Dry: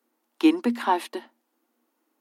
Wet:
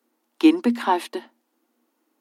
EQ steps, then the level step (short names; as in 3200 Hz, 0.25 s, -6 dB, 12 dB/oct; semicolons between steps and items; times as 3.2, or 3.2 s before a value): Bessel high-pass 160 Hz; tilt -2.5 dB/oct; high shelf 2300 Hz +10.5 dB; 0.0 dB